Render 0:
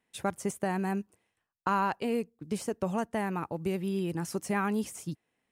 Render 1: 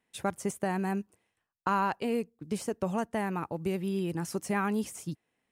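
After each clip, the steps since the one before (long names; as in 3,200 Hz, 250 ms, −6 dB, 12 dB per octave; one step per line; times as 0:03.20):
no processing that can be heard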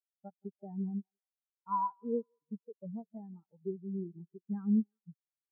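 feedback echo with a high-pass in the loop 171 ms, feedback 77%, high-pass 460 Hz, level −8 dB
every bin expanded away from the loudest bin 4 to 1
level −6.5 dB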